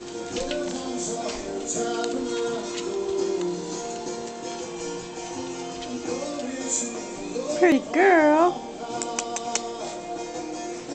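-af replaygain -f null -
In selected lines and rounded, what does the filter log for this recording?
track_gain = +2.9 dB
track_peak = 0.355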